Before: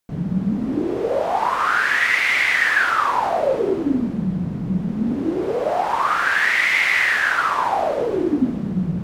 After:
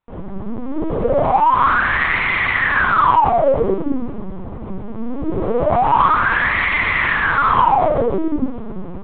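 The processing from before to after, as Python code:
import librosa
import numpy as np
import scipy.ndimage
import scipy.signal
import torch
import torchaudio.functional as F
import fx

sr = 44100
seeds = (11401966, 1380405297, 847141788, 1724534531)

p1 = fx.graphic_eq(x, sr, hz=(125, 250, 500, 1000), db=(-12, 4, 6, 11))
p2 = 10.0 ** (-11.5 / 20.0) * np.tanh(p1 / 10.0 ** (-11.5 / 20.0))
p3 = p1 + (p2 * librosa.db_to_amplitude(-4.5))
p4 = fx.lpc_vocoder(p3, sr, seeds[0], excitation='pitch_kept', order=8)
y = p4 * librosa.db_to_amplitude(-6.0)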